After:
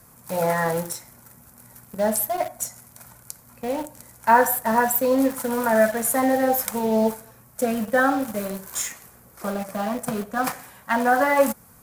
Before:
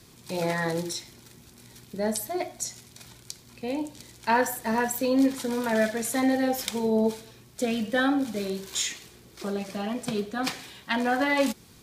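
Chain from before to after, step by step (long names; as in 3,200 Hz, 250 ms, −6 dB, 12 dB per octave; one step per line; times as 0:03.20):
drawn EQ curve 240 Hz 0 dB, 370 Hz −9 dB, 530 Hz +5 dB, 1,400 Hz +6 dB, 3,600 Hz −14 dB, 12,000 Hz +10 dB
in parallel at −9 dB: bit reduction 5 bits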